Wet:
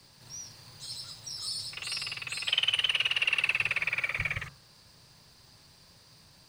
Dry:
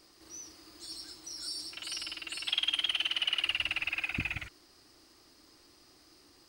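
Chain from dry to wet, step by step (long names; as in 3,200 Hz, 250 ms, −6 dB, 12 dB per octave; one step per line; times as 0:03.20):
frequency shifter −200 Hz
hum removal 67.56 Hz, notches 24
level +3.5 dB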